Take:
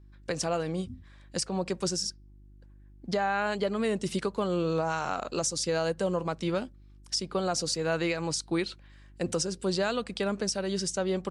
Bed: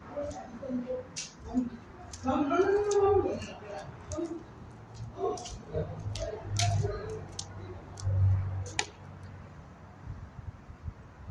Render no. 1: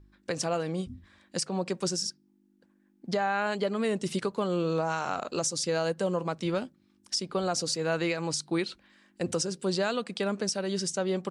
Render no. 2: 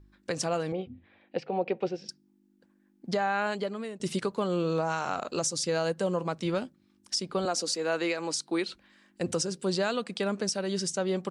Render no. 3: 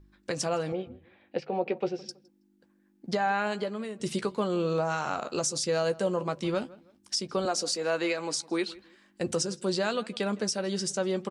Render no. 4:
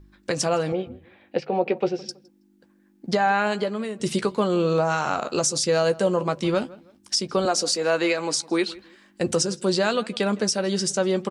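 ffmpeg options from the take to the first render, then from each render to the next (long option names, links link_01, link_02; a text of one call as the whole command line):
ffmpeg -i in.wav -af "bandreject=frequency=50:width_type=h:width=4,bandreject=frequency=100:width_type=h:width=4,bandreject=frequency=150:width_type=h:width=4" out.wav
ffmpeg -i in.wav -filter_complex "[0:a]asettb=1/sr,asplit=3[link_01][link_02][link_03];[link_01]atrim=end=0.724[link_04];[link_02]atrim=start=0.72:end=2.09,asetpts=PTS-STARTPTS,afade=type=in:duration=0.004:curve=qsin,afade=type=out:start_time=1.366:duration=0.004:curve=qsin,highpass=130,equalizer=frequency=180:width_type=q:width=4:gain=-6,equalizer=frequency=470:width_type=q:width=4:gain=8,equalizer=frequency=760:width_type=q:width=4:gain=8,equalizer=frequency=1100:width_type=q:width=4:gain=-8,equalizer=frequency=1600:width_type=q:width=4:gain=-5,equalizer=frequency=2500:width_type=q:width=4:gain=5,lowpass=frequency=3000:width=0.5412,lowpass=frequency=3000:width=1.3066[link_05];[link_03]atrim=start=2.086[link_06];[link_04][link_05]acrossfade=duration=0.004:curve1=hsin:curve2=qsin[link_07];[link_07][link_06]acrossfade=duration=0.004:curve1=qsin:curve2=hsin,asettb=1/sr,asplit=3[link_08][link_09][link_10];[link_08]atrim=end=7.454[link_11];[link_09]atrim=start=7.45:end=8.68,asetpts=PTS-STARTPTS,afade=type=in:duration=0.004:curve=qsin,afade=type=out:start_time=1.226:duration=0.004:curve=qsin,highpass=frequency=220:width=0.5412,highpass=frequency=220:width=1.3066[link_12];[link_10]atrim=start=8.676[link_13];[link_11][link_12]acrossfade=duration=0.004:curve1=hsin:curve2=qsin[link_14];[link_14][link_13]acrossfade=duration=0.004:curve1=qsin:curve2=hsin,asplit=2[link_15][link_16];[link_15]atrim=end=4,asetpts=PTS-STARTPTS,afade=type=out:start_time=3.44:duration=0.56:silence=0.141254[link_17];[link_16]atrim=start=4,asetpts=PTS-STARTPTS,afade=type=in:duration=0.004:curve=hsin:silence=0.141254[link_18];[link_17][link_18]concat=n=2:v=0:a=1" out.wav
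ffmpeg -i in.wav -filter_complex "[0:a]asplit=2[link_01][link_02];[link_02]adelay=14,volume=-11dB[link_03];[link_01][link_03]amix=inputs=2:normalize=0,asplit=2[link_04][link_05];[link_05]adelay=162,lowpass=frequency=2300:poles=1,volume=-20.5dB,asplit=2[link_06][link_07];[link_07]adelay=162,lowpass=frequency=2300:poles=1,volume=0.3[link_08];[link_04][link_06][link_08]amix=inputs=3:normalize=0" out.wav
ffmpeg -i in.wav -af "volume=6.5dB" out.wav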